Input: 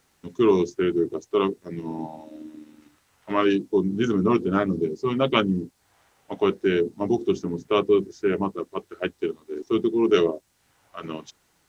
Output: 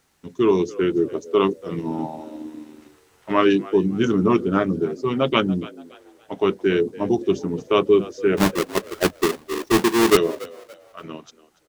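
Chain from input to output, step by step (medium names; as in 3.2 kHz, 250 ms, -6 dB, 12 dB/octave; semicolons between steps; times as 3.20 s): 8.37–10.17 s: square wave that keeps the level; gain riding within 4 dB 2 s; frequency-shifting echo 286 ms, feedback 34%, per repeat +74 Hz, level -19.5 dB; trim +2 dB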